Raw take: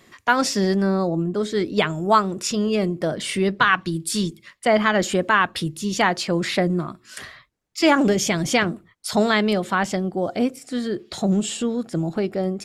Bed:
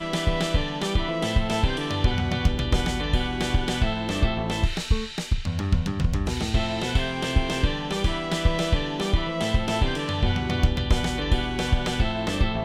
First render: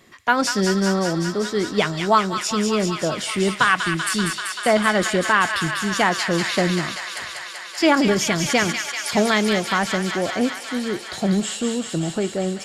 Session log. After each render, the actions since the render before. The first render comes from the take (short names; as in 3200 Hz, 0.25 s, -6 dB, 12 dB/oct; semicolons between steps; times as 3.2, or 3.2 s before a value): thin delay 0.193 s, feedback 83%, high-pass 1500 Hz, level -4.5 dB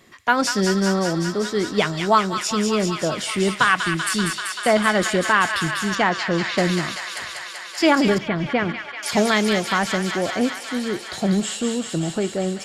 5.95–6.58 air absorption 110 m; 8.18–9.03 air absorption 440 m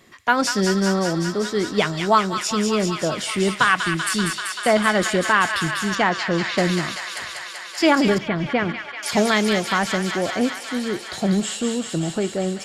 nothing audible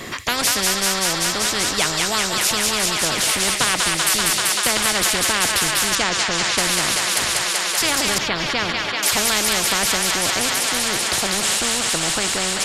spectral compressor 4:1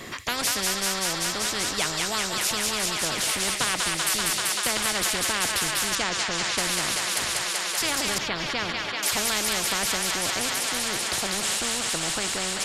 gain -6.5 dB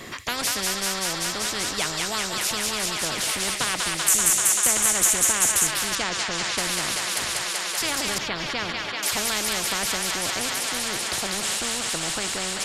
4.08–5.67 resonant high shelf 5700 Hz +6 dB, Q 3